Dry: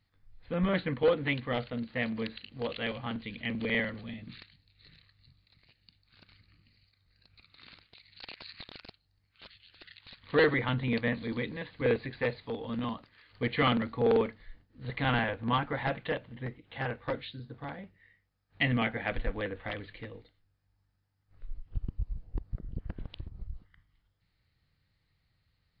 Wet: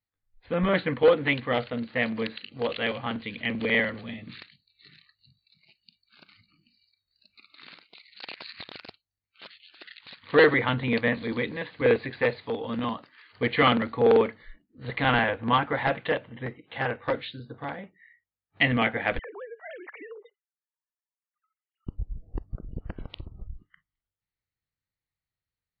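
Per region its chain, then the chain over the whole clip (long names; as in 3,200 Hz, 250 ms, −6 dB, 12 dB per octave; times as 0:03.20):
0:19.19–0:21.87: three sine waves on the formant tracks + low-pass filter 2,700 Hz + downward compressor, threshold −45 dBFS
whole clip: noise reduction from a noise print of the clip's start 22 dB; bass and treble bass −6 dB, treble −5 dB; level +7 dB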